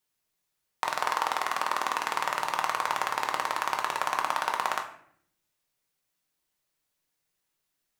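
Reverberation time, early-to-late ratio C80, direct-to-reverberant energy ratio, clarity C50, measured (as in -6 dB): 0.60 s, 12.0 dB, 2.0 dB, 9.0 dB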